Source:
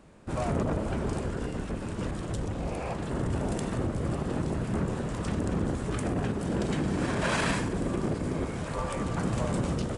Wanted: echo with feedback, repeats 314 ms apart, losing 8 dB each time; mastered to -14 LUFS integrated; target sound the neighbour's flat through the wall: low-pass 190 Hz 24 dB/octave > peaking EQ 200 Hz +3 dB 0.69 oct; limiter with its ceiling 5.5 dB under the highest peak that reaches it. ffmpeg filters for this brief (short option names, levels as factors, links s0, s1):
-af "alimiter=limit=0.0841:level=0:latency=1,lowpass=f=190:w=0.5412,lowpass=f=190:w=1.3066,equalizer=f=200:t=o:w=0.69:g=3,aecho=1:1:314|628|942|1256|1570:0.398|0.159|0.0637|0.0255|0.0102,volume=10.6"